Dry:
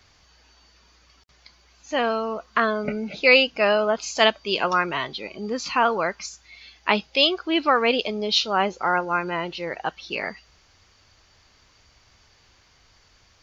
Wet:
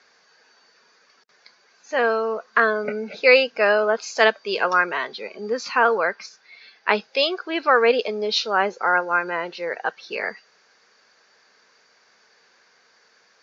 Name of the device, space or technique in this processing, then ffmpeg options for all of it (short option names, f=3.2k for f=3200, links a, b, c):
television speaker: -filter_complex "[0:a]asettb=1/sr,asplit=3[a][b][c];[a]atrim=end=5.984[d];[b]atrim=start=5.98:end=6.89,asetpts=PTS-STARTPTS,afade=t=in:d=0.004:c=qsin,afade=t=out:st=0.906:d=0.004:c=qsin,lowpass=f=5.3k:w=0.5412,lowpass=f=5.3k:w=1.3066[e];[c]atrim=start=6.886[f];[d][e]acrossfade=d=0.004:c1=hsin:c2=qsin[g];[g][f]acrossfade=d=0.004:c1=qsin:c2=hsin,highpass=f=220:w=0.5412,highpass=f=220:w=1.3066,equalizer=f=300:t=q:w=4:g=-9,equalizer=f=460:t=q:w=4:g=7,equalizer=f=1.6k:t=q:w=4:g=8,equalizer=f=3.1k:t=q:w=4:g=-7,lowpass=f=6.6k:w=0.5412,lowpass=f=6.6k:w=1.3066"